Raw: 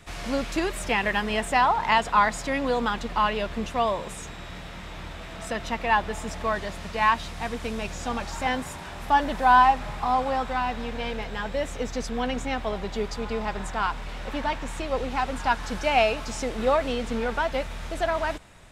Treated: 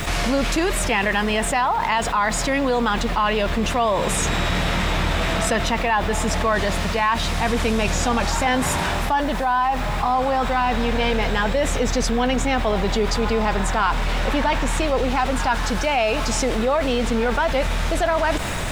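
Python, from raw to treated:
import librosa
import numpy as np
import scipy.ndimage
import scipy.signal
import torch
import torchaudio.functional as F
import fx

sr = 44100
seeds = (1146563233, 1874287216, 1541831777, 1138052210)

y = fx.rider(x, sr, range_db=10, speed_s=0.5)
y = fx.quant_dither(y, sr, seeds[0], bits=10, dither='none')
y = fx.env_flatten(y, sr, amount_pct=70)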